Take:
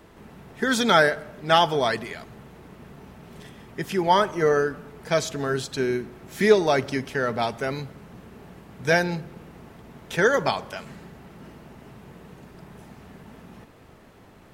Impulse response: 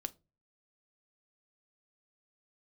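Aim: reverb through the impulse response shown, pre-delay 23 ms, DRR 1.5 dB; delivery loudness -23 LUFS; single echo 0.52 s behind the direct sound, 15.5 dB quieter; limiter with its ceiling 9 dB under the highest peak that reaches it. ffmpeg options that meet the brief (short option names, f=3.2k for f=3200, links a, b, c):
-filter_complex "[0:a]alimiter=limit=-13dB:level=0:latency=1,aecho=1:1:520:0.168,asplit=2[a][b];[1:a]atrim=start_sample=2205,adelay=23[c];[b][c]afir=irnorm=-1:irlink=0,volume=0.5dB[d];[a][d]amix=inputs=2:normalize=0,volume=0.5dB"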